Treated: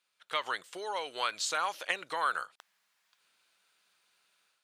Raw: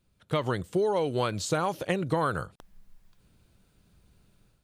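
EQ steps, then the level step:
high-pass filter 1,300 Hz 12 dB per octave
high-shelf EQ 9,200 Hz −11 dB
+4.0 dB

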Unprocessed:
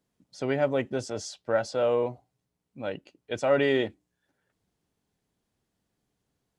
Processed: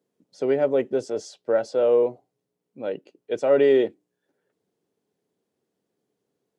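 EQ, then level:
Chebyshev high-pass filter 170 Hz, order 2
parametric band 430 Hz +12 dB 1 octave
−2.5 dB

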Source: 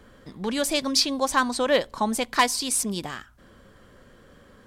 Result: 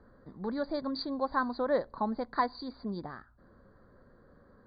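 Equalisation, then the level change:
Butterworth band-reject 2,800 Hz, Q 0.84
linear-phase brick-wall low-pass 4,800 Hz
high-frequency loss of the air 90 metres
−6.5 dB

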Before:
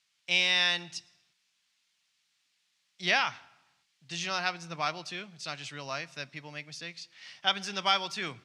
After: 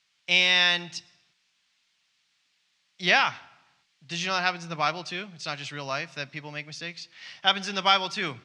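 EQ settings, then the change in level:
high-frequency loss of the air 60 metres
+6.0 dB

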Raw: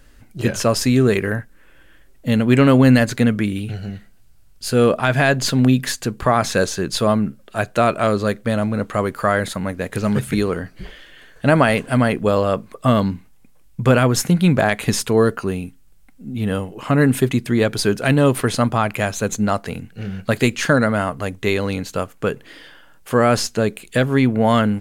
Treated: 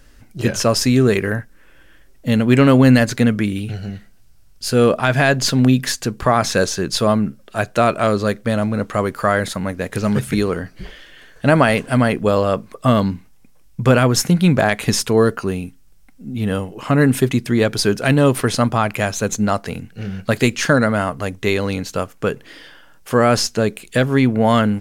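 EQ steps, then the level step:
parametric band 5,500 Hz +4.5 dB 0.37 octaves
+1.0 dB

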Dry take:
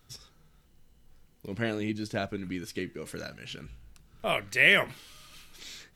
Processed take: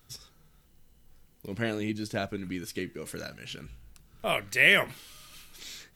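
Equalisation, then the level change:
high-shelf EQ 9,500 Hz +8 dB
0.0 dB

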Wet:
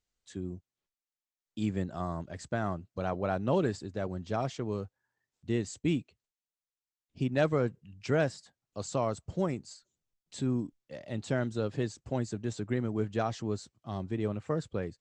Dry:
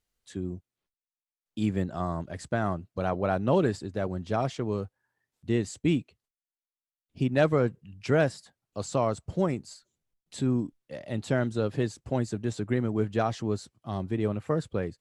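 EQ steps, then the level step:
high-frequency loss of the air 120 metres
parametric band 7,600 Hz +13.5 dB 1.2 octaves
−4.0 dB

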